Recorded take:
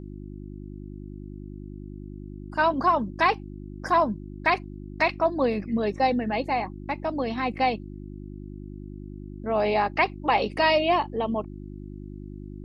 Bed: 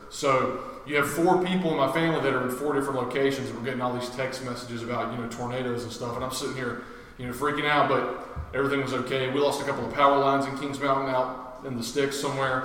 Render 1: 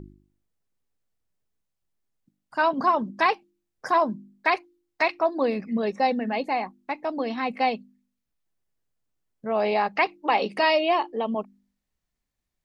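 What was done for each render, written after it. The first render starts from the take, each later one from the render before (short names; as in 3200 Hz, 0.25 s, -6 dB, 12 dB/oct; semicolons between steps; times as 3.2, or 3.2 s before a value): de-hum 50 Hz, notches 7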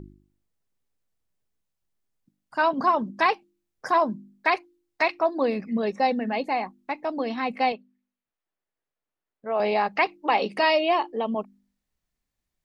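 7.72–9.6 tone controls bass -14 dB, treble -14 dB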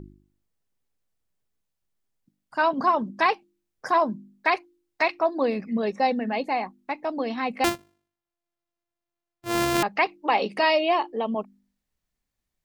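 7.64–9.83 sample sorter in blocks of 128 samples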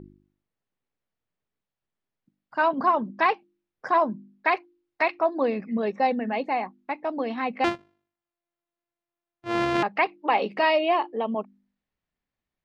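LPF 3100 Hz 12 dB/oct; low shelf 68 Hz -11 dB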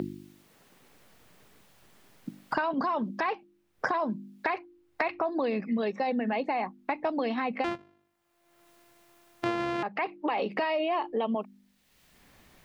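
limiter -21 dBFS, peak gain reduction 11 dB; three-band squash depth 100%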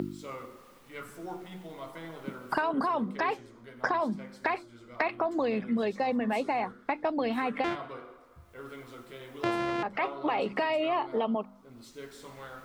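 add bed -19 dB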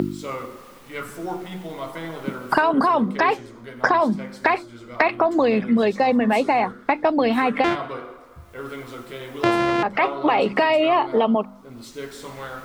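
gain +10.5 dB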